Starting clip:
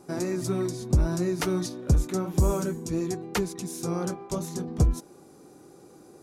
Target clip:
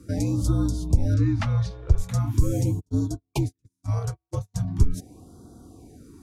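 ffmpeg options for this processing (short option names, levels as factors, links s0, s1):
-filter_complex "[0:a]asettb=1/sr,asplit=3[s0][s1][s2];[s0]atrim=end=1.144[s3];[s1]atrim=start=1.14:end=1.98,asetpts=PTS-STARTPTS,afade=t=in:d=0.004:c=qsin,afade=t=out:st=0.836:d=0.004:c=qsin,lowpass=3600[s4];[s2]atrim=start=1.976[s5];[s3][s4]acrossfade=d=0.004:c1=hsin:c2=qsin[s6];[s6][s5]acrossfade=d=0.004:c1=qsin:c2=hsin,asplit=3[s7][s8][s9];[s7]afade=t=out:st=2.79:d=0.02[s10];[s8]agate=range=0.00398:threshold=0.0398:ratio=16:detection=peak,afade=t=in:st=2.79:d=0.02,afade=t=out:st=4.54:d=0.02[s11];[s9]afade=t=in:st=4.54:d=0.02[s12];[s10][s11][s12]amix=inputs=3:normalize=0,alimiter=limit=0.126:level=0:latency=1:release=100,equalizer=f=130:w=0.85:g=11.5,afreqshift=-64,afftfilt=real='re*(1-between(b*sr/1024,230*pow(2300/230,0.5+0.5*sin(2*PI*0.41*pts/sr))/1.41,230*pow(2300/230,0.5+0.5*sin(2*PI*0.41*pts/sr))*1.41))':imag='im*(1-between(b*sr/1024,230*pow(2300/230,0.5+0.5*sin(2*PI*0.41*pts/sr))/1.41,230*pow(2300/230,0.5+0.5*sin(2*PI*0.41*pts/sr))*1.41))':win_size=1024:overlap=0.75"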